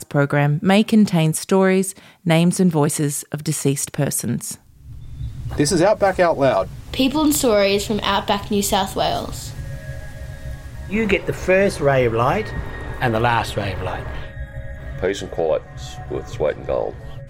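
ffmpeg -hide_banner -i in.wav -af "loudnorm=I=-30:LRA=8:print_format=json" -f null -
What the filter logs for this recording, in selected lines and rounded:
"input_i" : "-19.6",
"input_tp" : "-2.6",
"input_lra" : "7.1",
"input_thresh" : "-30.5",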